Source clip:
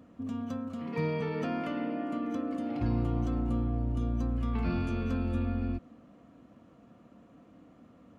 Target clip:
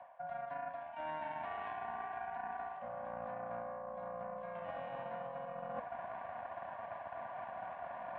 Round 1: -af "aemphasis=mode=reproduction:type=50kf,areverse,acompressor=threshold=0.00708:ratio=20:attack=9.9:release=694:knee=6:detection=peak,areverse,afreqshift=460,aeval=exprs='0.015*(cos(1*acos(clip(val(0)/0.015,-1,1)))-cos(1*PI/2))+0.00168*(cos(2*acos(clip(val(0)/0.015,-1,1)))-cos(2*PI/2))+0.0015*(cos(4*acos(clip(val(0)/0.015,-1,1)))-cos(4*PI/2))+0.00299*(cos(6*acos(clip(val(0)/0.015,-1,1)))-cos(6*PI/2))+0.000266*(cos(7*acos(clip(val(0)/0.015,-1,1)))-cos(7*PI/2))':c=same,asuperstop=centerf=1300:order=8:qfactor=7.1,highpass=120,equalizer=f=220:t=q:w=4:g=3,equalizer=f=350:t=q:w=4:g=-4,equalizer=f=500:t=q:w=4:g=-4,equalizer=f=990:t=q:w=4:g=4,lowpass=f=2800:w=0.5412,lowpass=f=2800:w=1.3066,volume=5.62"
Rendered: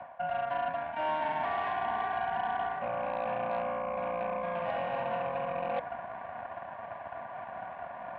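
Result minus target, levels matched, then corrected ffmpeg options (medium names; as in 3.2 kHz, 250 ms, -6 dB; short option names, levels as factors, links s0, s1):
compression: peak gain reduction -9.5 dB
-af "aemphasis=mode=reproduction:type=50kf,areverse,acompressor=threshold=0.00224:ratio=20:attack=9.9:release=694:knee=6:detection=peak,areverse,afreqshift=460,aeval=exprs='0.015*(cos(1*acos(clip(val(0)/0.015,-1,1)))-cos(1*PI/2))+0.00168*(cos(2*acos(clip(val(0)/0.015,-1,1)))-cos(2*PI/2))+0.0015*(cos(4*acos(clip(val(0)/0.015,-1,1)))-cos(4*PI/2))+0.00299*(cos(6*acos(clip(val(0)/0.015,-1,1)))-cos(6*PI/2))+0.000266*(cos(7*acos(clip(val(0)/0.015,-1,1)))-cos(7*PI/2))':c=same,asuperstop=centerf=1300:order=8:qfactor=7.1,highpass=120,equalizer=f=220:t=q:w=4:g=3,equalizer=f=350:t=q:w=4:g=-4,equalizer=f=500:t=q:w=4:g=-4,equalizer=f=990:t=q:w=4:g=4,lowpass=f=2800:w=0.5412,lowpass=f=2800:w=1.3066,volume=5.62"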